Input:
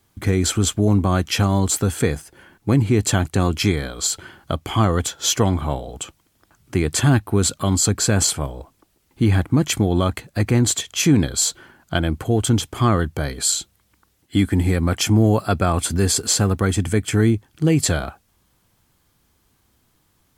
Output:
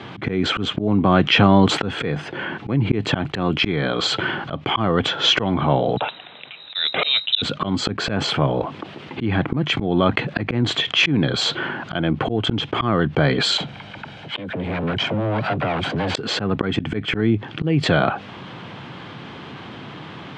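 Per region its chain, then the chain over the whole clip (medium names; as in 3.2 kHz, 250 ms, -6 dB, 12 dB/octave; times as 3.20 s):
5.97–7.42 s: frequency inversion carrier 3.9 kHz + three bands expanded up and down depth 40%
13.57–16.15 s: comb filter that takes the minimum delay 1.3 ms + compression, threshold -33 dBFS + phase dispersion lows, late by 41 ms, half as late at 430 Hz
whole clip: elliptic band-pass 130–3200 Hz, stop band 80 dB; slow attack 531 ms; level flattener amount 50%; trim +7 dB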